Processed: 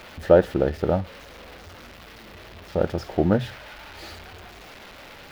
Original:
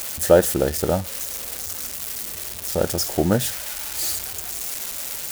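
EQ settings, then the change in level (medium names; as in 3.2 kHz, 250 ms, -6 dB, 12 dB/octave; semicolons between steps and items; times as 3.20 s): distance through air 350 m; hum notches 60/120 Hz; 0.0 dB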